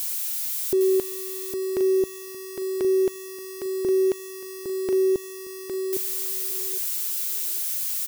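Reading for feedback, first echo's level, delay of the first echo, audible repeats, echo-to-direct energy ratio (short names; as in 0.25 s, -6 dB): 22%, -6.5 dB, 0.809 s, 3, -6.5 dB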